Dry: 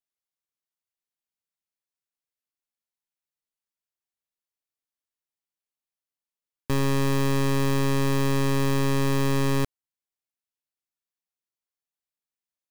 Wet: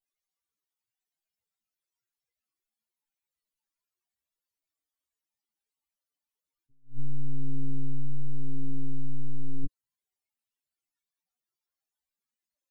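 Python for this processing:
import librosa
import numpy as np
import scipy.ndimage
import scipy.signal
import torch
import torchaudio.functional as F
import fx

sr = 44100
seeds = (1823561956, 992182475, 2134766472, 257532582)

y = fx.spec_expand(x, sr, power=3.8)
y = fx.chorus_voices(y, sr, voices=6, hz=0.24, base_ms=16, depth_ms=2.6, mix_pct=35)
y = fx.attack_slew(y, sr, db_per_s=230.0)
y = F.gain(torch.from_numpy(y), 4.0).numpy()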